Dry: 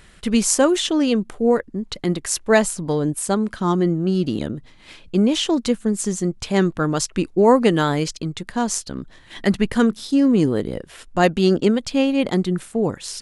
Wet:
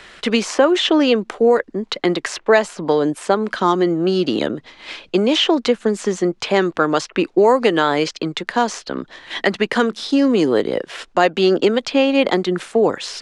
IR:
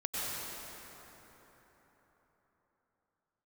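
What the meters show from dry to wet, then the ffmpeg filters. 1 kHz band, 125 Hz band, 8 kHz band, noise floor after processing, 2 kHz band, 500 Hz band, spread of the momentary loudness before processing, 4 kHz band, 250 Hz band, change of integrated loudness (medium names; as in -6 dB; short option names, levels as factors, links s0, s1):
+5.0 dB, -5.5 dB, -7.5 dB, -53 dBFS, +5.5 dB, +4.5 dB, 10 LU, +5.5 dB, 0.0 dB, +2.0 dB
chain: -filter_complex "[0:a]acrossover=split=110|3200[s0][s1][s2];[s0]acompressor=threshold=0.00355:ratio=4[s3];[s1]acompressor=threshold=0.126:ratio=4[s4];[s2]acompressor=threshold=0.0112:ratio=4[s5];[s3][s4][s5]amix=inputs=3:normalize=0,acrossover=split=320 6500:gain=0.158 1 0.1[s6][s7][s8];[s6][s7][s8]amix=inputs=3:normalize=0,asplit=2[s9][s10];[s10]alimiter=limit=0.133:level=0:latency=1:release=310,volume=1.12[s11];[s9][s11]amix=inputs=2:normalize=0,volume=1.78"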